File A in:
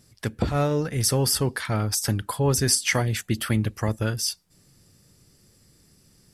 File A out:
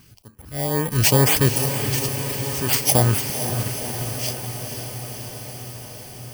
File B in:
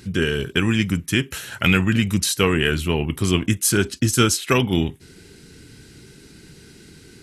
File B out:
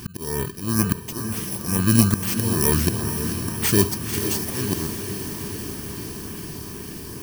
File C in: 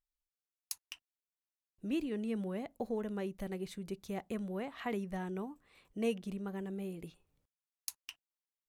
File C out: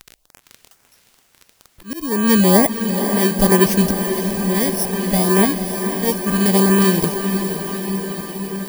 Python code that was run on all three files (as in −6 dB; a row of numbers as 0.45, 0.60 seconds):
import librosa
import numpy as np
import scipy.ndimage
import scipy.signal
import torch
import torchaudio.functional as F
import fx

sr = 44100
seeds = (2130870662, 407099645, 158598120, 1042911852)

p1 = fx.bit_reversed(x, sr, seeds[0], block=32)
p2 = fx.peak_eq(p1, sr, hz=690.0, db=5.5, octaves=0.65)
p3 = fx.dmg_crackle(p2, sr, seeds[1], per_s=28.0, level_db=-48.0)
p4 = fx.filter_lfo_notch(p3, sr, shape='saw_up', hz=2.2, low_hz=530.0, high_hz=6400.0, q=1.4)
p5 = fx.auto_swell(p4, sr, attack_ms=603.0)
p6 = p5 + fx.echo_diffused(p5, sr, ms=507, feedback_pct=74, wet_db=-8, dry=0)
y = librosa.util.normalize(p6) * 10.0 ** (-2 / 20.0)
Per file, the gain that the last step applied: +6.5, +7.5, +27.0 decibels